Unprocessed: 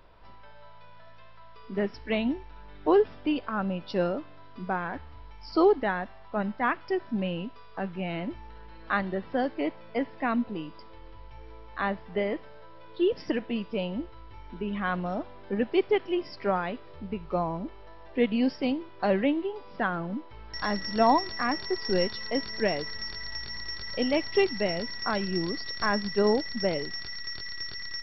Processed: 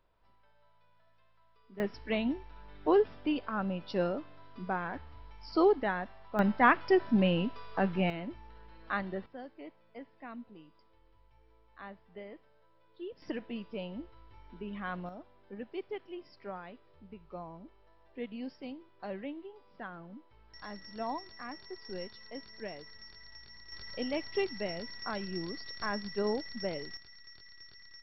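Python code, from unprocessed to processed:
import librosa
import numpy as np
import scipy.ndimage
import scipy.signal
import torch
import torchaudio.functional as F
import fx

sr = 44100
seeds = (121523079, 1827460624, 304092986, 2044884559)

y = fx.gain(x, sr, db=fx.steps((0.0, -17.0), (1.8, -4.0), (6.39, 3.5), (8.1, -6.5), (9.26, -18.0), (13.22, -9.0), (15.09, -15.5), (23.72, -8.5), (26.97, -17.0)))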